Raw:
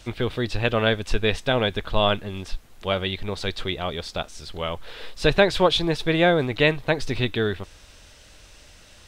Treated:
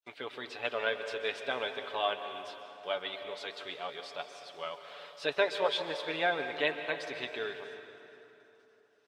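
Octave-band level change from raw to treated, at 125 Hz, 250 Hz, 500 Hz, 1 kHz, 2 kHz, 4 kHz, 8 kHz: -29.5 dB, -20.0 dB, -11.0 dB, -8.5 dB, -8.5 dB, -10.5 dB, -14.0 dB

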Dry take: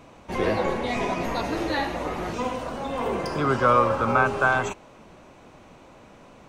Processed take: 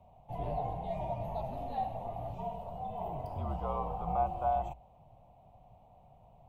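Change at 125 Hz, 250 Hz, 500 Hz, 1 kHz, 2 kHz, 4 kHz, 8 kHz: -7.5 dB, -16.5 dB, -12.5 dB, -9.5 dB, -32.5 dB, under -20 dB, under -25 dB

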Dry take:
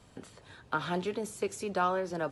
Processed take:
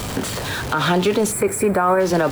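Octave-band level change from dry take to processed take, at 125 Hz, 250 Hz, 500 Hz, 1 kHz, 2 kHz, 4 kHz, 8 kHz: +17.5 dB, +16.5 dB, +15.0 dB, +12.5 dB, +15.0 dB, +18.5 dB, +20.0 dB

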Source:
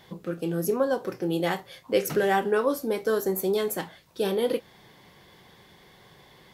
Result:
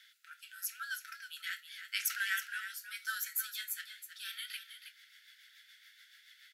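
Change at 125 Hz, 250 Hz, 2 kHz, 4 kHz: under -40 dB, under -40 dB, -2.5 dB, -2.5 dB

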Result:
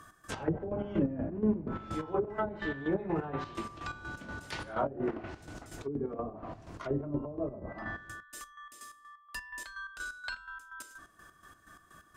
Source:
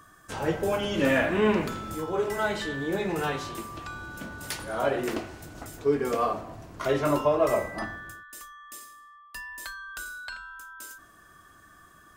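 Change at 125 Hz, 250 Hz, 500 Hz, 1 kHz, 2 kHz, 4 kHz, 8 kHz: -3.0 dB, -4.0 dB, -9.5 dB, -8.5 dB, -8.5 dB, -11.0 dB, -9.5 dB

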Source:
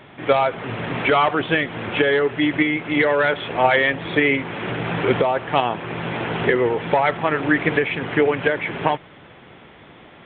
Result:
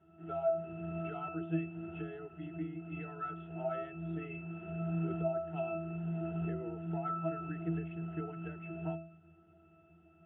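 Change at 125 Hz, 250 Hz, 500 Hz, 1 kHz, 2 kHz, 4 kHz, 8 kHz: -9.5 dB, -15.0 dB, -19.0 dB, -21.5 dB, -30.5 dB, under -35 dB, no reading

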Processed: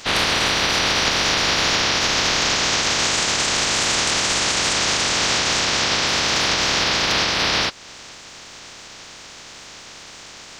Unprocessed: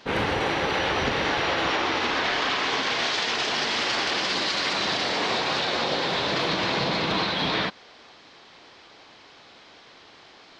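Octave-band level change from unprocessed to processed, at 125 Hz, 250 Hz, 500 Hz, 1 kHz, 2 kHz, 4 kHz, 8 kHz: +4.0 dB, +1.5 dB, +1.0 dB, +2.5 dB, +5.5 dB, +8.0 dB, +18.0 dB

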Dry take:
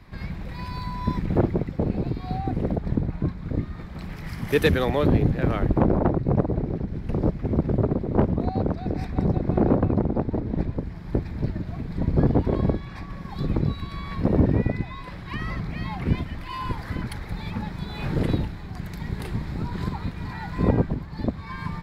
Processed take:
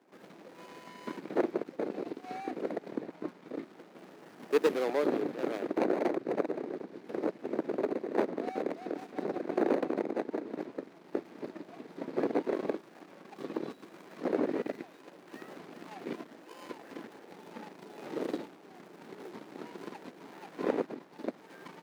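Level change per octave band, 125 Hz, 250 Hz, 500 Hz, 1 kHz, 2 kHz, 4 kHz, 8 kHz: -30.0 dB, -11.0 dB, -5.0 dB, -7.5 dB, -9.0 dB, -11.0 dB, no reading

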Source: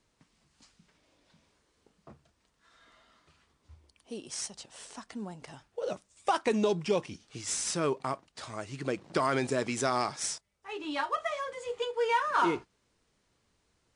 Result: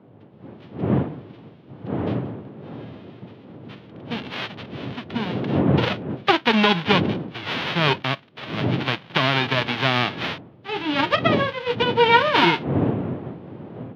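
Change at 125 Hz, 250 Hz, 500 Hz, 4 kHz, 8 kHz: +18.5 dB, +13.5 dB, +8.5 dB, +17.0 dB, under -10 dB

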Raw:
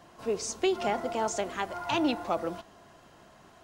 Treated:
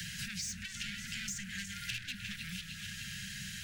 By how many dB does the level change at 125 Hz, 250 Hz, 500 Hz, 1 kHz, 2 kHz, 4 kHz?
+2.0 dB, -14.0 dB, under -40 dB, -26.5 dB, -1.0 dB, 0.0 dB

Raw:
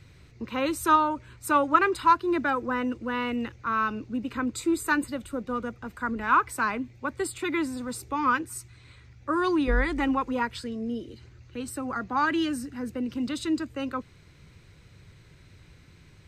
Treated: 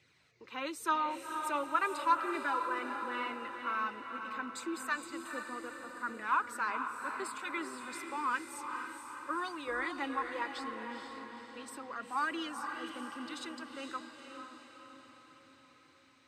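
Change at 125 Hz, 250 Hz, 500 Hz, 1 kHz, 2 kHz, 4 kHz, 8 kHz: under -25 dB, -15.0 dB, -11.5 dB, -8.0 dB, -7.0 dB, -6.0 dB, -8.5 dB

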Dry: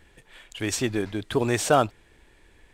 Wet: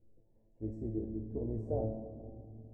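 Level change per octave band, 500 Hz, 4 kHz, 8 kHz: -13.5 dB, under -40 dB, under -40 dB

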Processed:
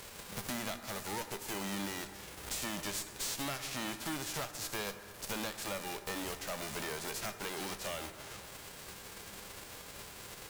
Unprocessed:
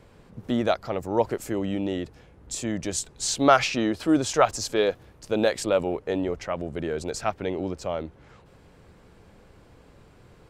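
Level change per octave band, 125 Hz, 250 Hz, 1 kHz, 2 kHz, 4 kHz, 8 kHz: -12.0 dB, -16.0 dB, -14.5 dB, -8.0 dB, -6.0 dB, -6.5 dB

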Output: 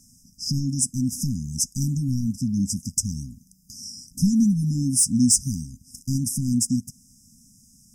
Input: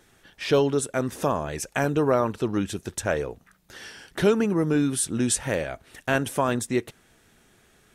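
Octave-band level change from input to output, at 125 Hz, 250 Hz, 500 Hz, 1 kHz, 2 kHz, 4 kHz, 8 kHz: +6.0 dB, +3.5 dB, under -35 dB, under -40 dB, under -40 dB, +3.0 dB, +8.0 dB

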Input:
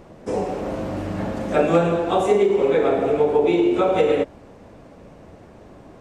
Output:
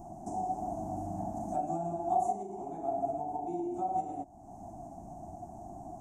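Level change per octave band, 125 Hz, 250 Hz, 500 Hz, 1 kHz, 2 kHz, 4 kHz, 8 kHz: -14.5 dB, -16.0 dB, -19.5 dB, -6.0 dB, under -35 dB, under -35 dB, no reading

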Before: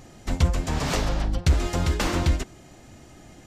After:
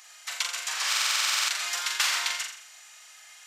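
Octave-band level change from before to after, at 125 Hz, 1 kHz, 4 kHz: under -40 dB, -2.0 dB, +8.5 dB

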